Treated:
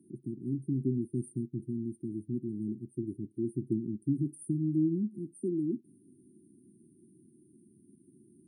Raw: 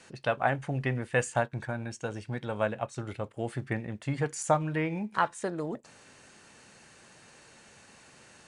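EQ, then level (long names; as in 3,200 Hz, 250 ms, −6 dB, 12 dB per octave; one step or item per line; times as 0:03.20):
high-pass filter 110 Hz
linear-phase brick-wall band-stop 390–8,600 Hz
parametric band 310 Hz +11.5 dB 2 octaves
−5.0 dB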